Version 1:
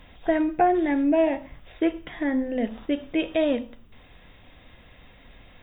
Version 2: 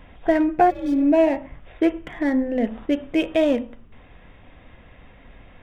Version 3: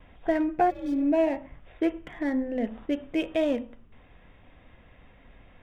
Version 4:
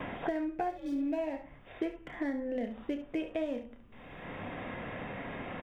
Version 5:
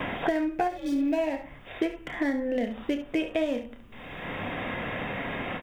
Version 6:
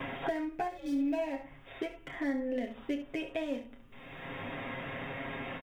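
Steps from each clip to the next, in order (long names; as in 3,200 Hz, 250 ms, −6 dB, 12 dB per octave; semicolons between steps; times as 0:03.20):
adaptive Wiener filter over 9 samples; healed spectral selection 0:00.72–0:01.03, 310–3,000 Hz after; level +4 dB
noise gate with hold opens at −43 dBFS; level −6.5 dB
ambience of single reflections 29 ms −8 dB, 70 ms −11.5 dB; multiband upward and downward compressor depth 100%; level −8.5 dB
high-shelf EQ 2,300 Hz +8 dB; every ending faded ahead of time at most 260 dB per second; level +6.5 dB
comb filter 7.4 ms; level −8.5 dB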